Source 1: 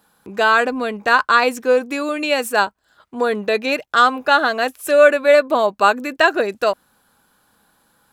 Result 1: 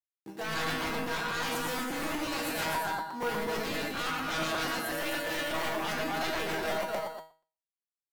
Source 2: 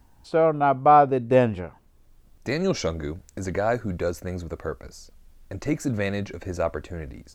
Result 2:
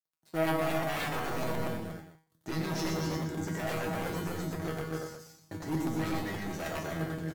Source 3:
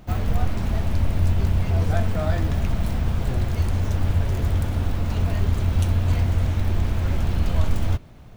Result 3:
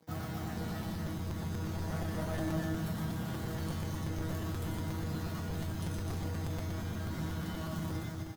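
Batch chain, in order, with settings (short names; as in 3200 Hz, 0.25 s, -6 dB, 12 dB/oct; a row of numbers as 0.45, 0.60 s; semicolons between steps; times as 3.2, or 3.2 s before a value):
in parallel at -8.5 dB: sample-and-hold 35×; on the sum: thirty-one-band EQ 160 Hz -3 dB, 500 Hz -11 dB, 2500 Hz -10 dB, 12500 Hz +5 dB; reverse; compressor 6:1, threshold -24 dBFS; reverse; crossover distortion -44.5 dBFS; dynamic EQ 6300 Hz, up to -3 dB, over -49 dBFS, Q 0.78; HPF 100 Hz 24 dB/oct; tapped delay 91/118/256/346/469 ms -7/-3.5/-3.5/-8/-17 dB; sine folder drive 14 dB, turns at -10.5 dBFS; resonator 160 Hz, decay 0.38 s, harmonics all, mix 90%; crackling interface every 0.12 s, samples 256, repeat, from 0.7; gain -7 dB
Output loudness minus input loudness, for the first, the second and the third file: -15.5, -10.0, -13.5 LU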